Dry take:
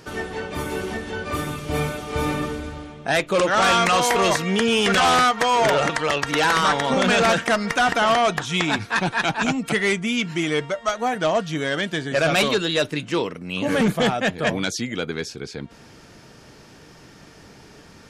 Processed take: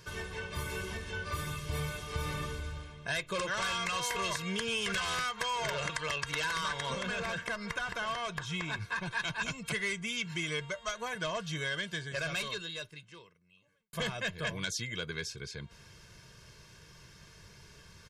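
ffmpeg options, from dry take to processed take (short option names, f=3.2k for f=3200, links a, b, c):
-filter_complex "[0:a]asettb=1/sr,asplit=3[a][b][c];[a]atrim=end=6.954[d];[b]atrim=start=6.95:end=9.11,asetpts=PTS-STARTPTS,afade=t=in:d=0.004:c=qsin,afade=t=out:st=2.156:d=0.004:c=qsin,acrossover=split=1900|5500[e][f][g];[e]acompressor=threshold=-22dB:ratio=4[h];[f]acompressor=threshold=-37dB:ratio=4[i];[g]acompressor=threshold=-49dB:ratio=4[j];[h][i][j]amix=inputs=3:normalize=0[k];[c]atrim=start=9.106[l];[d][k]acrossfade=d=0.004:c1=hsin:c2=qsin[m];[m][l]acrossfade=d=0.004:c1=qsin:c2=hsin,asplit=2[n][o];[n]atrim=end=13.93,asetpts=PTS-STARTPTS,afade=t=out:st=11.76:d=2.17:c=qua[p];[o]atrim=start=13.93,asetpts=PTS-STARTPTS,afade=t=in:d=0.004:c=hsin[q];[p][q]concat=n=2:v=0:a=1,equalizer=f=540:t=o:w=1.5:g=-11,aecho=1:1:1.9:0.79,acompressor=threshold=-23dB:ratio=6,volume=-7.5dB"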